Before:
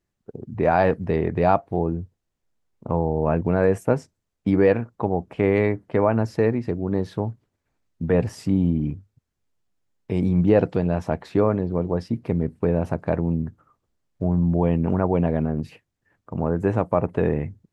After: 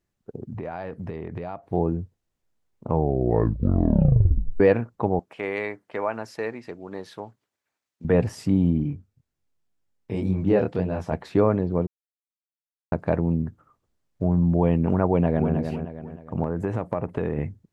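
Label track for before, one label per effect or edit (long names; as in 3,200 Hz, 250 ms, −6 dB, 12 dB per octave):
0.470000	1.730000	downward compressor 8 to 1, threshold −29 dBFS
2.880000	2.880000	tape stop 1.72 s
5.190000	8.050000	high-pass filter 1,200 Hz 6 dB per octave
8.830000	11.130000	chorus effect 1.9 Hz, delay 19.5 ms, depth 6.5 ms
11.870000	12.920000	silence
15.060000	15.540000	delay throw 310 ms, feedback 40%, level −7 dB
16.430000	17.380000	downward compressor 4 to 1, threshold −21 dBFS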